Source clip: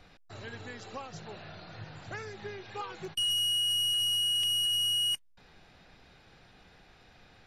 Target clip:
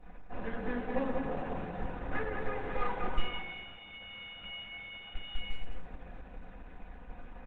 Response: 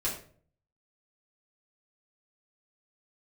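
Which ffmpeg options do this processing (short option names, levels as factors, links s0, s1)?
-filter_complex "[0:a]aresample=8000,aeval=exprs='max(val(0),0)':c=same,aresample=44100,lowpass=1600,equalizer=f=110:w=2.9:g=-5.5,aecho=1:1:200|350|462.5|546.9|610.2:0.631|0.398|0.251|0.158|0.1[s0];[1:a]atrim=start_sample=2205,asetrate=66150,aresample=44100[s1];[s0][s1]afir=irnorm=-1:irlink=0,asplit=2[s2][s3];[s3]acompressor=threshold=0.0891:ratio=5,volume=0.944[s4];[s2][s4]amix=inputs=2:normalize=0,aecho=1:1:4:0.64,alimiter=limit=0.316:level=0:latency=1:release=68,bandreject=f=186.6:t=h:w=4,bandreject=f=373.2:t=h:w=4,bandreject=f=559.8:t=h:w=4,bandreject=f=746.4:t=h:w=4,bandreject=f=933:t=h:w=4,bandreject=f=1119.6:t=h:w=4,bandreject=f=1306.2:t=h:w=4,bandreject=f=1492.8:t=h:w=4,bandreject=f=1679.4:t=h:w=4,bandreject=f=1866:t=h:w=4,bandreject=f=2052.6:t=h:w=4,bandreject=f=2239.2:t=h:w=4,bandreject=f=2425.8:t=h:w=4,bandreject=f=2612.4:t=h:w=4,bandreject=f=2799:t=h:w=4,bandreject=f=2985.6:t=h:w=4,bandreject=f=3172.2:t=h:w=4,bandreject=f=3358.8:t=h:w=4,bandreject=f=3545.4:t=h:w=4,bandreject=f=3732:t=h:w=4,bandreject=f=3918.6:t=h:w=4,bandreject=f=4105.2:t=h:w=4,bandreject=f=4291.8:t=h:w=4,bandreject=f=4478.4:t=h:w=4,bandreject=f=4665:t=h:w=4,bandreject=f=4851.6:t=h:w=4,bandreject=f=5038.2:t=h:w=4,bandreject=f=5224.8:t=h:w=4,bandreject=f=5411.4:t=h:w=4,bandreject=f=5598:t=h:w=4,bandreject=f=5784.6:t=h:w=4,bandreject=f=5971.2:t=h:w=4" -ar 48000 -c:a libopus -b:a 12k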